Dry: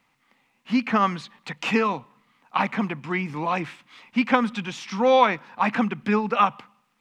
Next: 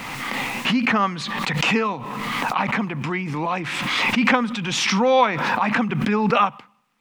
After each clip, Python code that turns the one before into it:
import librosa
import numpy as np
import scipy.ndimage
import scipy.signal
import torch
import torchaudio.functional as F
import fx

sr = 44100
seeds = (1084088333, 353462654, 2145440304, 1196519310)

y = fx.pre_swell(x, sr, db_per_s=22.0)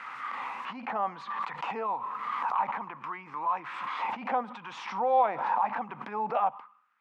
y = fx.peak_eq(x, sr, hz=660.0, db=-2.5, octaves=0.25)
y = fx.transient(y, sr, attack_db=-8, sustain_db=4)
y = fx.auto_wah(y, sr, base_hz=730.0, top_hz=1500.0, q=3.8, full_db=-16.0, direction='down')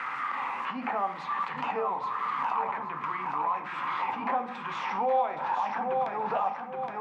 y = fx.echo_feedback(x, sr, ms=819, feedback_pct=26, wet_db=-7)
y = fx.room_shoebox(y, sr, seeds[0], volume_m3=43.0, walls='mixed', distance_m=0.34)
y = fx.band_squash(y, sr, depth_pct=70)
y = y * librosa.db_to_amplitude(-1.5)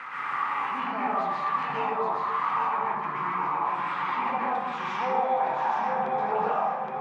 y = fx.rev_plate(x, sr, seeds[1], rt60_s=1.1, hf_ratio=0.55, predelay_ms=110, drr_db=-7.0)
y = y * librosa.db_to_amplitude(-4.5)